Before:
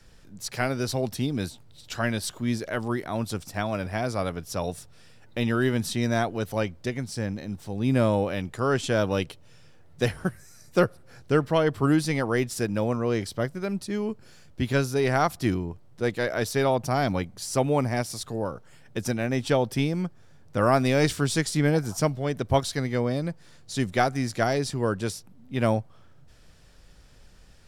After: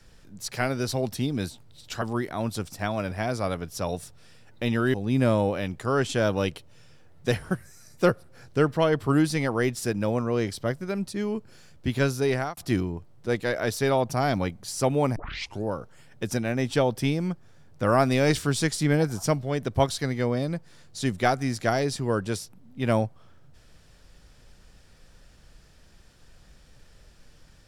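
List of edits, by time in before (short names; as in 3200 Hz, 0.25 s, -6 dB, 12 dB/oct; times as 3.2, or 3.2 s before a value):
2.02–2.77 cut
5.69–7.68 cut
15.03–15.31 fade out
17.9 tape start 0.48 s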